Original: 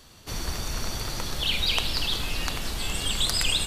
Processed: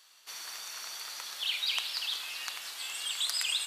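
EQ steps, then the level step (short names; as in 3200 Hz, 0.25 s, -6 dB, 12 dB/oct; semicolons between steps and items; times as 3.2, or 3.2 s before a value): HPF 1200 Hz 12 dB/oct; -5.5 dB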